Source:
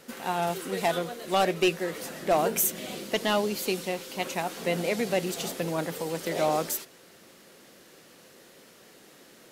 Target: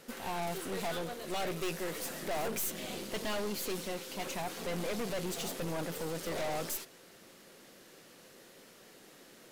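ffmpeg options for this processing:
-filter_complex "[0:a]asettb=1/sr,asplit=3[a][b][c];[a]atrim=end=1.474[d];[b]atrim=start=1.47:end=2.47,asetpts=PTS-STARTPTS,afade=t=in:d=0.004:c=qsin,afade=t=out:st=0.996:d=0.004:c=qsin,highshelf=f=5.3k:g=6[e];[c]atrim=start=2.466[f];[d][e]acrossfade=d=0.004:c1=hsin:c2=qsin[g];[g][f]acrossfade=d=0.004:c1=qsin:c2=hsin,aeval=exprs='(tanh(44.7*val(0)+0.6)-tanh(0.6))/44.7':c=same"

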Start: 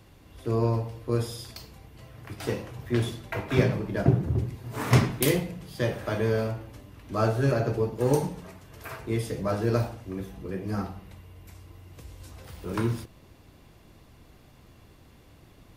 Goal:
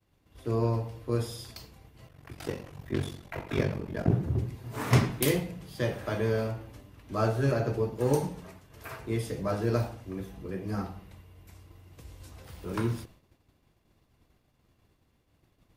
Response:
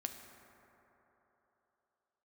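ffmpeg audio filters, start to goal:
-filter_complex "[0:a]asettb=1/sr,asplit=3[a][b][c];[a]atrim=end=2.074[d];[b]atrim=start=2.07:end=4.11,asetpts=PTS-STARTPTS,afade=t=in:d=0.004:c=qsin,afade=t=out:st=2.036:d=0.004:c=qsin,aeval=exprs='val(0)*sin(2*PI*23*n/s)':c=same[e];[c]atrim=start=4.106[f];[d][e]acrossfade=d=0.004:c1=hsin:c2=qsin[g];[g][f]acrossfade=d=0.004:c1=qsin:c2=hsin,agate=range=-33dB:threshold=-44dB:ratio=3:detection=peak,volume=-2.5dB"

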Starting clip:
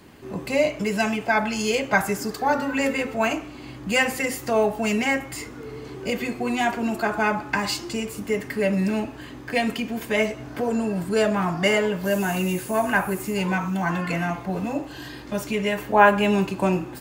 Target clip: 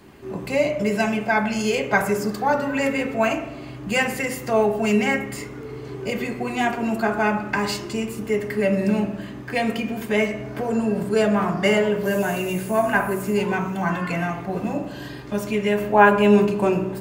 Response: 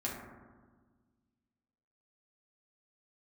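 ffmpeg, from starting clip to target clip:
-filter_complex "[0:a]asplit=2[a][b];[1:a]atrim=start_sample=2205,asetrate=74970,aresample=44100,lowpass=3.1k[c];[b][c]afir=irnorm=-1:irlink=0,volume=-3.5dB[d];[a][d]amix=inputs=2:normalize=0,volume=-1.5dB"

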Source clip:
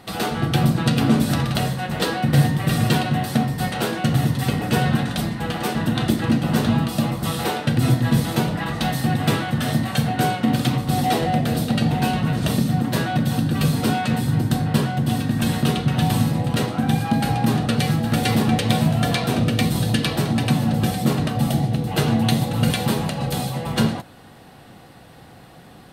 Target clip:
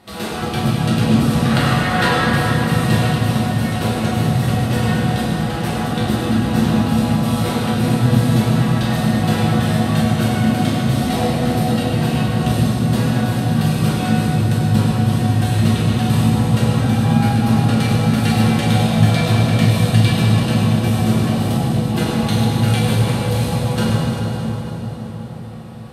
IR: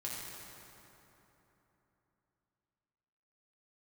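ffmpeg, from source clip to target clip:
-filter_complex "[0:a]asettb=1/sr,asplit=3[a][b][c];[a]atrim=end=1.454[d];[b]atrim=start=1.45:end=2.14,asetpts=PTS-STARTPTS,afade=t=in:d=0.004:c=qsin,afade=t=out:st=0.686:d=0.004:c=qsin,equalizer=f=1.5k:w=0.66:g=12[e];[c]atrim=start=2.136[f];[d][e]acrossfade=d=0.004:c1=hsin:c2=qsin[g];[g][f]acrossfade=d=0.004:c1=qsin:c2=hsin[h];[1:a]atrim=start_sample=2205,asetrate=26019,aresample=44100[i];[h][i]afir=irnorm=-1:irlink=0,volume=-2.5dB"

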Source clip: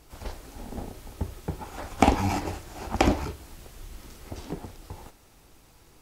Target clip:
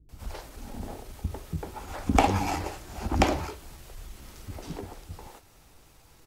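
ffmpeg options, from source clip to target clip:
-filter_complex "[0:a]acrossover=split=290[a][b];[b]adelay=90[c];[a][c]amix=inputs=2:normalize=0,atempo=0.96"

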